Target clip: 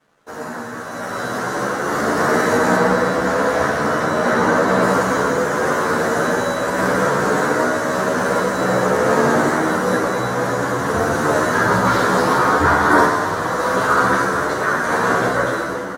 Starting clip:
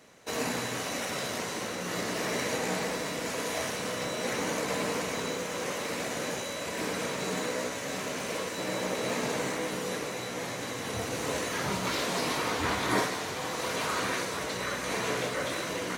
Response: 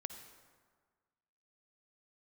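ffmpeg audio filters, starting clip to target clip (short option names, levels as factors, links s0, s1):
-filter_complex "[0:a]asettb=1/sr,asplit=3[s0][s1][s2];[s0]atrim=end=2.764[s3];[s1]atrim=start=2.76:end=4.82,asetpts=PTS-STARTPTS,afade=t=in:d=0.004:c=qsin,afade=t=out:st=2.056:d=0.004:c=qsin,acrossover=split=5400[s4][s5];[s5]acompressor=threshold=0.00501:ratio=4:attack=1:release=60[s6];[s4][s6]amix=inputs=2:normalize=0[s7];[s2]atrim=start=4.816[s8];[s3][s7]acrossfade=d=0.004:c1=hsin:c2=qsin[s9];[s9][s8]acrossfade=d=0.004:c1=qsin:c2=hsin,highshelf=f=1900:t=q:w=3:g=-8,dynaudnorm=f=850:g=3:m=5.01,aeval=exprs='sgn(val(0))*max(abs(val(0))-0.00119,0)':c=same[s10];[1:a]atrim=start_sample=2205[s11];[s10][s11]afir=irnorm=-1:irlink=0,asplit=2[s12][s13];[s13]adelay=11.5,afreqshift=0.56[s14];[s12][s14]amix=inputs=2:normalize=1,volume=2.24"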